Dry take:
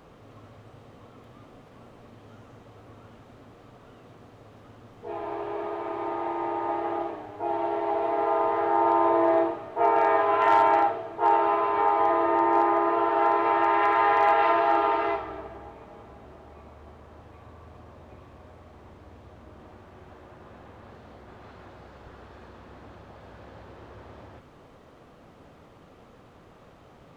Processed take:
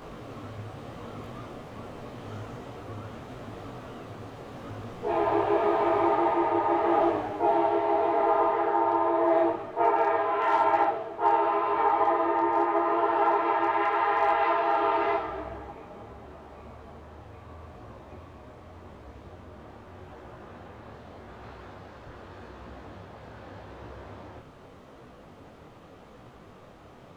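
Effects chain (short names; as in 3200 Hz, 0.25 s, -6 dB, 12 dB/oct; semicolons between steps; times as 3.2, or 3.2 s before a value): vocal rider 0.5 s; detuned doubles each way 29 cents; gain +3 dB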